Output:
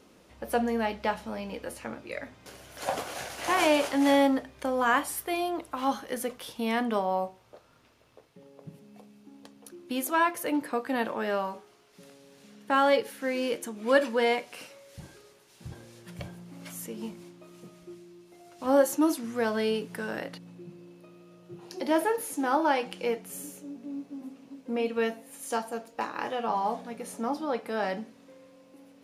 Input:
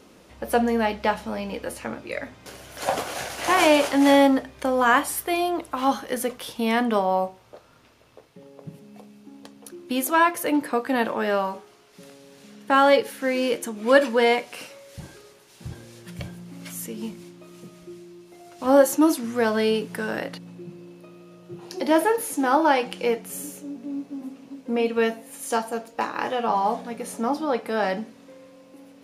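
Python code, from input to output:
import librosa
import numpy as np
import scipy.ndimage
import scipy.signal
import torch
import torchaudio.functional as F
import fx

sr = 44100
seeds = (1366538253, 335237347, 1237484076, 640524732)

y = fx.dynamic_eq(x, sr, hz=760.0, q=0.74, threshold_db=-50.0, ratio=4.0, max_db=5, at=(15.71, 17.95))
y = y * 10.0 ** (-6.0 / 20.0)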